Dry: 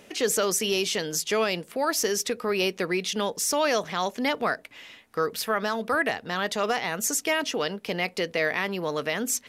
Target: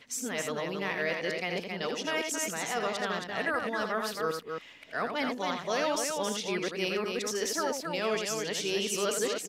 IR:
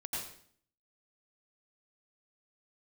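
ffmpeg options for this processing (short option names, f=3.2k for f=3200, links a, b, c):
-af "areverse,equalizer=f=12k:t=o:w=0.61:g=-7,aecho=1:1:81.63|271.1:0.501|0.562,volume=-6.5dB"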